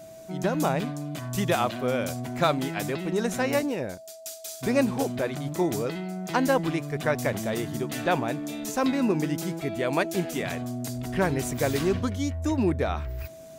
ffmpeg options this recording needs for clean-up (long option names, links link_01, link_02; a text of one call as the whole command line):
ffmpeg -i in.wav -af "bandreject=frequency=650:width=30" out.wav